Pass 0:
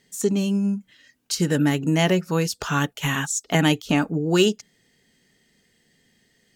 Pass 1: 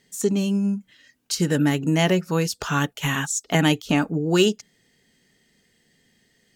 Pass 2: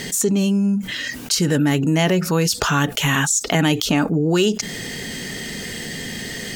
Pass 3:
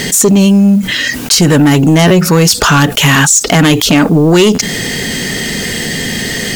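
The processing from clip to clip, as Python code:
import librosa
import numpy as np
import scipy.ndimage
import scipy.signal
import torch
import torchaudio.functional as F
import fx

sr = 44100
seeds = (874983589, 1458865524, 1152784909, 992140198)

y1 = x
y2 = fx.env_flatten(y1, sr, amount_pct=70)
y2 = y2 * librosa.db_to_amplitude(-1.0)
y3 = fx.fold_sine(y2, sr, drive_db=10, ceiling_db=-1.5)
y3 = fx.quant_dither(y3, sr, seeds[0], bits=6, dither='none')
y3 = fx.buffer_glitch(y3, sr, at_s=(2.07, 4.54), block=512, repeats=2)
y3 = y3 * librosa.db_to_amplitude(-1.0)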